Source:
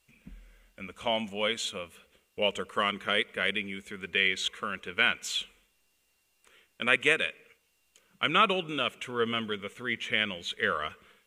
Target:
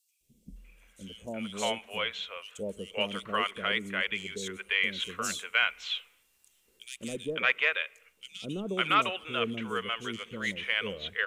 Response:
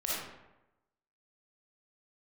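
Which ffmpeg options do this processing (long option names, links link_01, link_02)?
-filter_complex "[0:a]asettb=1/sr,asplit=3[link_01][link_02][link_03];[link_01]atrim=end=4.844[link_04];[link_02]atrim=start=4.84:end=6.97,asetpts=PTS-STARTPTS,afade=type=in:duration=0.004:curve=qsin,afade=type=out:start_time=2.126:duration=0.004:curve=qsin,highshelf=frequency=4300:gain=5[link_05];[link_03]atrim=start=6.966[link_06];[link_04][link_05]acrossfade=duration=0.004:curve1=hsin:curve2=qsin[link_07];[link_07][link_06]acrossfade=duration=0.004:curve1=qsin:curve2=hsin,asoftclip=type=tanh:threshold=-10dB,acrossover=split=520|4300[link_08][link_09][link_10];[link_08]adelay=210[link_11];[link_09]adelay=560[link_12];[link_11][link_12][link_10]amix=inputs=3:normalize=0"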